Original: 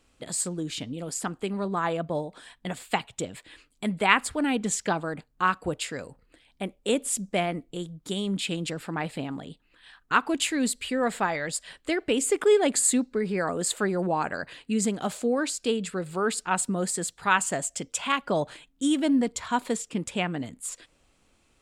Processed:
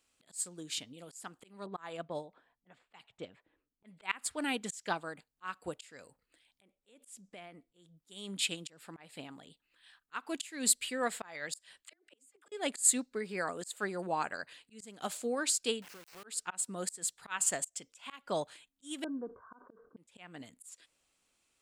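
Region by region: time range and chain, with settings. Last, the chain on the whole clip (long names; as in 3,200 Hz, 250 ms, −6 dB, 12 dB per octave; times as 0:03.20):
0:01.66–0:04.60: low-pass that shuts in the quiet parts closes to 390 Hz, open at −22.5 dBFS + de-essing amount 25%
0:06.62–0:07.97: high-shelf EQ 5,600 Hz −9.5 dB + downward compressor 12 to 1, threshold −32 dBFS
0:11.83–0:12.52: downward compressor 5 to 1, threshold −23 dBFS + all-pass dispersion lows, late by 69 ms, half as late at 410 Hz + gate with flip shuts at −20 dBFS, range −27 dB
0:15.82–0:16.24: linear delta modulator 16 kbit/s, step −34.5 dBFS + downward compressor 4 to 1, threshold −35 dBFS + centre clipping without the shift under −39.5 dBFS
0:19.04–0:19.97: Chebyshev low-pass with heavy ripple 1,600 Hz, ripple 9 dB + level that may fall only so fast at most 130 dB per second
whole clip: spectral tilt +2.5 dB per octave; volume swells 236 ms; expander for the loud parts 1.5 to 1, over −39 dBFS; level −2.5 dB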